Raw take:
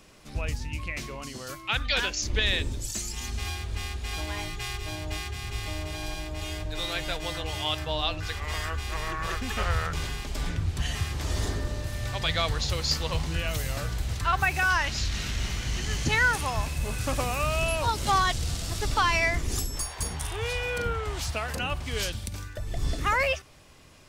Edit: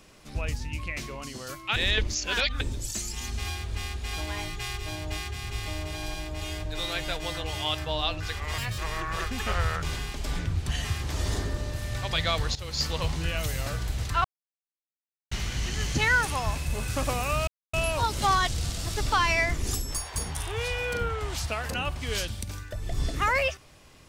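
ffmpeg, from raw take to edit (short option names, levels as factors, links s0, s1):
-filter_complex "[0:a]asplit=9[s0][s1][s2][s3][s4][s5][s6][s7][s8];[s0]atrim=end=1.762[s9];[s1]atrim=start=1.758:end=2.612,asetpts=PTS-STARTPTS,areverse[s10];[s2]atrim=start=2.608:end=8.584[s11];[s3]atrim=start=8.58:end=8.89,asetpts=PTS-STARTPTS,asetrate=67032,aresample=44100,atrim=end_sample=8994,asetpts=PTS-STARTPTS[s12];[s4]atrim=start=8.886:end=12.66,asetpts=PTS-STARTPTS,afade=t=out:st=3.77:d=0.004:c=hsin:silence=0.177828[s13];[s5]atrim=start=12.66:end=14.35,asetpts=PTS-STARTPTS,afade=t=in:d=0.33:silence=0.177828,afade=t=out:st=1.686:d=0.004:c=hsin[s14];[s6]atrim=start=14.35:end=15.42,asetpts=PTS-STARTPTS,volume=0[s15];[s7]atrim=start=15.42:end=17.58,asetpts=PTS-STARTPTS,afade=t=in:d=0.004:c=hsin,afade=t=out:st=2.156:d=0.004:c=hsin,apad=pad_dur=0.26[s16];[s8]atrim=start=17.58,asetpts=PTS-STARTPTS,afade=t=in:d=0.004:c=hsin[s17];[s9][s10]acrossfade=d=0.004:c1=hsin:c2=hsin[s18];[s18][s11]acrossfade=d=0.004:c1=hsin:c2=hsin[s19];[s19][s12]acrossfade=d=0.004:c1=hsin:c2=hsin[s20];[s13][s14][s15][s16][s17]concat=n=5:v=0:a=1[s21];[s20][s21]acrossfade=d=0.004:c1=hsin:c2=hsin"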